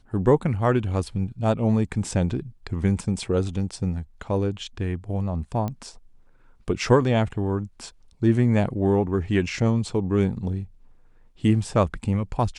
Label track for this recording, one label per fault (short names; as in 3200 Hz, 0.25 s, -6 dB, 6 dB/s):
5.680000	5.680000	pop -17 dBFS